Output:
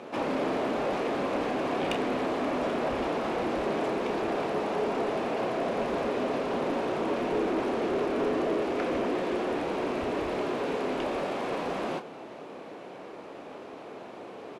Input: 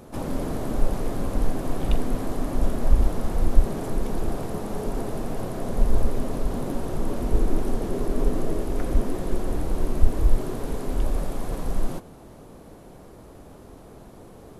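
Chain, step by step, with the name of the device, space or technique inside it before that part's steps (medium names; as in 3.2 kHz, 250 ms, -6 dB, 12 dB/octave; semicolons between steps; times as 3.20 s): intercom (band-pass 350–3800 Hz; peaking EQ 2.5 kHz +6.5 dB 0.58 oct; saturation -28.5 dBFS, distortion -17 dB; doubling 31 ms -11 dB); trim +6.5 dB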